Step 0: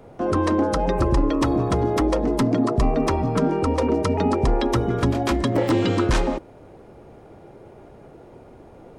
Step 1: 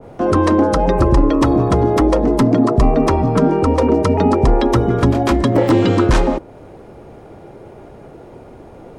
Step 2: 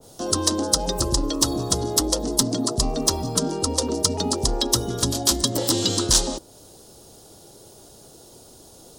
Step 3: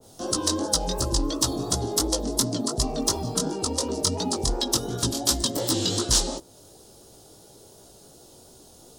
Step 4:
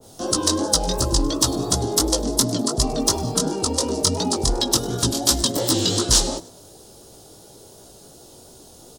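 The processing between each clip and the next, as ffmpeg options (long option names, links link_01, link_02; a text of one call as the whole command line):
ffmpeg -i in.wav -af "adynamicequalizer=threshold=0.01:dfrequency=1600:dqfactor=0.7:tfrequency=1600:tqfactor=0.7:attack=5:release=100:ratio=0.375:range=2:mode=cutabove:tftype=highshelf,volume=7dB" out.wav
ffmpeg -i in.wav -af "aexciter=amount=12.6:drive=9.1:freq=3600,volume=-12dB" out.wav
ffmpeg -i in.wav -af "flanger=delay=15.5:depth=6.5:speed=2.8" out.wav
ffmpeg -i in.wav -filter_complex "[0:a]asplit=4[link_01][link_02][link_03][link_04];[link_02]adelay=101,afreqshift=69,volume=-21dB[link_05];[link_03]adelay=202,afreqshift=138,volume=-28.5dB[link_06];[link_04]adelay=303,afreqshift=207,volume=-36.1dB[link_07];[link_01][link_05][link_06][link_07]amix=inputs=4:normalize=0,volume=4.5dB" out.wav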